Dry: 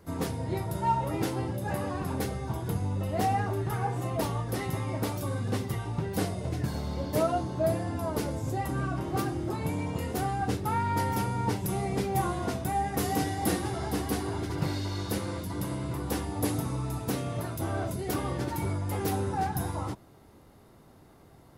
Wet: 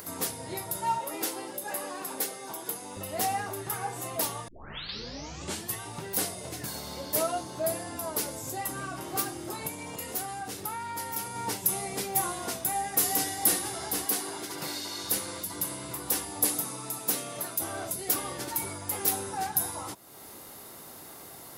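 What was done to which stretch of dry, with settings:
0:00.98–0:02.97: Chebyshev high-pass filter 300 Hz
0:04.48: tape start 1.33 s
0:09.67–0:11.36: downward compressor 4 to 1, threshold −30 dBFS
0:14.05–0:15.04: high-pass filter 170 Hz
0:16.45–0:17.62: high-pass filter 130 Hz 24 dB per octave
whole clip: RIAA equalisation recording; upward compression, threshold −33 dBFS; level −1.5 dB

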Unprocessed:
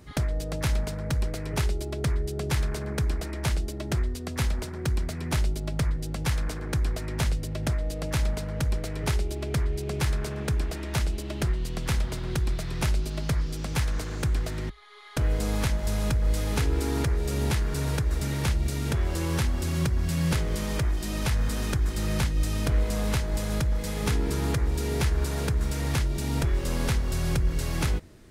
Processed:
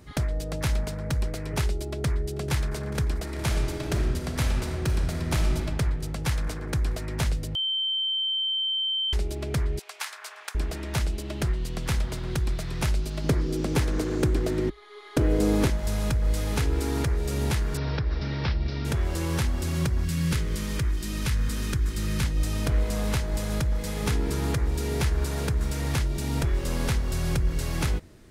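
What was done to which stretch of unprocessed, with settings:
0:01.89–0:02.65: delay throw 440 ms, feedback 85%, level −16 dB
0:03.23–0:05.56: thrown reverb, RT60 2.5 s, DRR 2 dB
0:07.55–0:09.13: beep over 3,110 Hz −24 dBFS
0:09.79–0:10.55: high-pass filter 860 Hz 24 dB per octave
0:13.24–0:15.70: parametric band 340 Hz +14.5 dB 1.2 octaves
0:17.77–0:18.85: Chebyshev low-pass filter 5,400 Hz, order 6
0:20.04–0:22.24: parametric band 700 Hz −11 dB 0.86 octaves

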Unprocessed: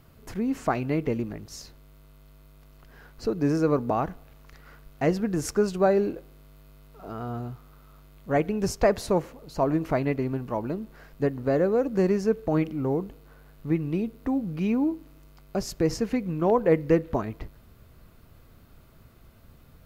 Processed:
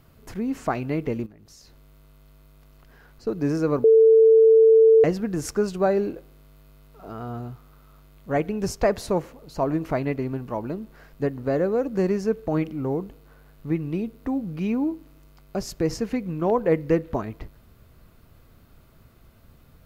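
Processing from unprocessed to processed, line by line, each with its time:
0:01.26–0:03.27: downward compressor 5 to 1, threshold −47 dBFS
0:03.84–0:05.04: beep over 446 Hz −10.5 dBFS

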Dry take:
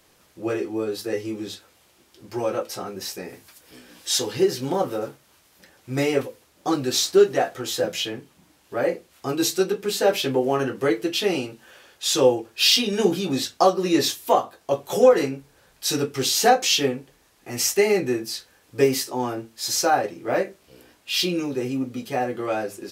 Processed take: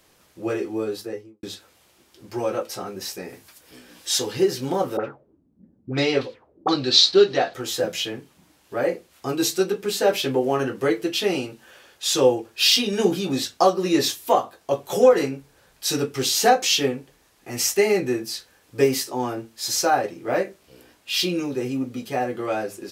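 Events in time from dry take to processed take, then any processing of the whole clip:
0:00.86–0:01.43: fade out and dull
0:04.97–0:07.54: envelope-controlled low-pass 200–4,200 Hz up, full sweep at −22.5 dBFS

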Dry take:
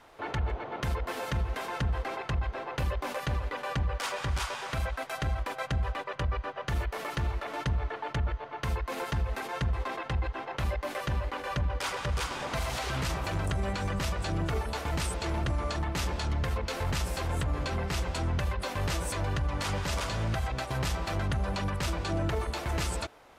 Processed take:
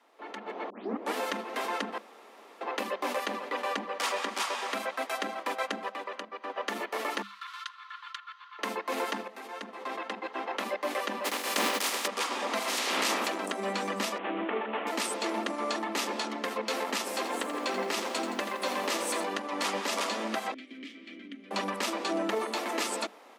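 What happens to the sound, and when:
0:00.70: tape start 0.45 s
0:01.98–0:02.61: fill with room tone
0:05.89–0:06.50: downward compressor, threshold −36 dBFS
0:07.22–0:08.59: Chebyshev high-pass with heavy ripple 1,000 Hz, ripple 9 dB
0:09.28–0:10.52: fade in, from −13 dB
0:11.24–0:12.06: compressing power law on the bin magnitudes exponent 0.41
0:12.67–0:13.27: ceiling on every frequency bin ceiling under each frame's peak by 19 dB
0:14.18–0:14.87: variable-slope delta modulation 16 kbit/s
0:17.16–0:19.24: feedback echo at a low word length 84 ms, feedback 55%, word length 9 bits, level −9 dB
0:20.54–0:21.51: formant filter i
whole clip: Chebyshev high-pass filter 200 Hz, order 10; notch filter 1,500 Hz, Q 11; automatic gain control gain up to 12 dB; level −8 dB

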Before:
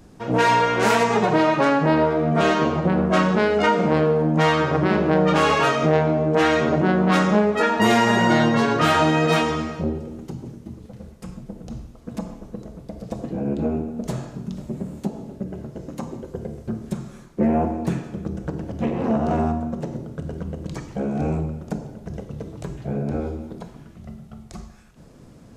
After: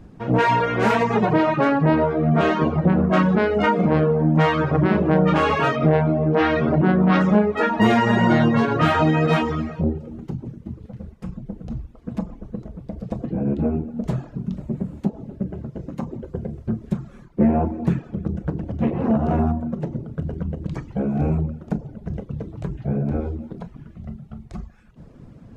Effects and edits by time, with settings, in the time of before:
0:05.76–0:07.21: Butterworth low-pass 5,600 Hz
whole clip: reverb reduction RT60 0.54 s; bass and treble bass +6 dB, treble −12 dB

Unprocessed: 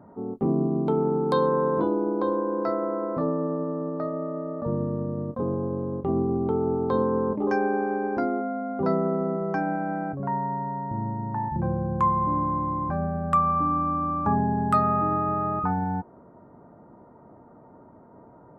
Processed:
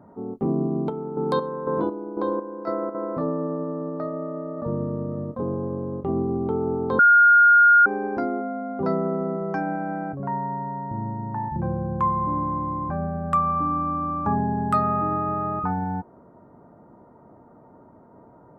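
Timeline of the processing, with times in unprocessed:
0:00.67–0:02.95: square-wave tremolo 2 Hz, depth 60%, duty 45%
0:04.03–0:04.71: delay throw 540 ms, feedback 50%, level −16.5 dB
0:06.99–0:07.86: beep over 1,420 Hz −10.5 dBFS
0:11.95–0:13.26: low-pass filter 3,400 Hz 6 dB per octave

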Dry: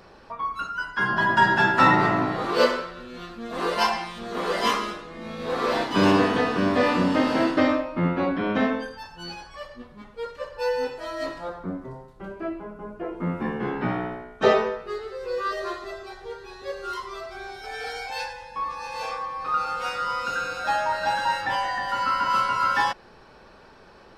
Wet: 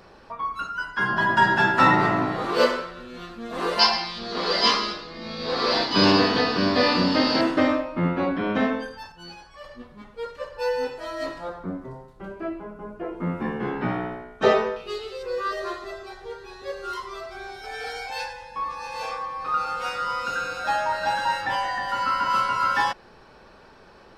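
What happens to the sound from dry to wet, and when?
0:03.79–0:07.41: low-pass with resonance 4,700 Hz, resonance Q 7
0:09.12–0:09.64: clip gain −5 dB
0:14.76–0:15.23: high shelf with overshoot 2,200 Hz +6.5 dB, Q 3

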